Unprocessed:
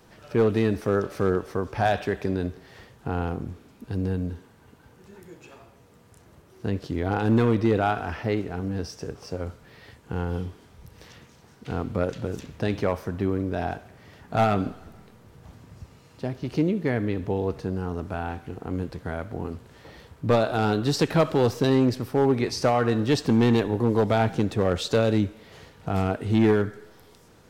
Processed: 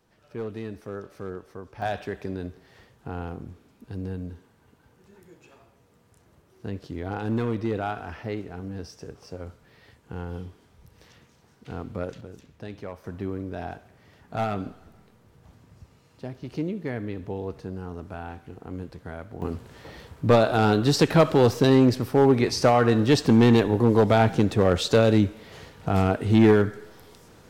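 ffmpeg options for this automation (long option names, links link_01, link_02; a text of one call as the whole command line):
ffmpeg -i in.wav -af "asetnsamples=nb_out_samples=441:pad=0,asendcmd='1.82 volume volume -6dB;12.21 volume volume -12.5dB;13.04 volume volume -6dB;19.42 volume volume 3dB',volume=-12.5dB" out.wav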